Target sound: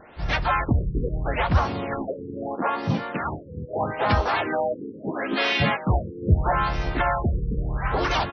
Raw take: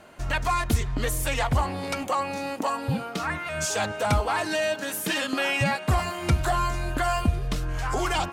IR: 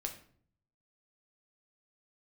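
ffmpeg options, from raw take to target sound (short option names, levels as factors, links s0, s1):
-filter_complex "[0:a]asplit=4[s0][s1][s2][s3];[s1]asetrate=35002,aresample=44100,atempo=1.25992,volume=0.501[s4];[s2]asetrate=55563,aresample=44100,atempo=0.793701,volume=0.708[s5];[s3]asetrate=66075,aresample=44100,atempo=0.66742,volume=0.316[s6];[s0][s4][s5][s6]amix=inputs=4:normalize=0,afftfilt=real='re*lt(b*sr/1024,480*pow(6300/480,0.5+0.5*sin(2*PI*0.77*pts/sr)))':imag='im*lt(b*sr/1024,480*pow(6300/480,0.5+0.5*sin(2*PI*0.77*pts/sr)))':win_size=1024:overlap=0.75"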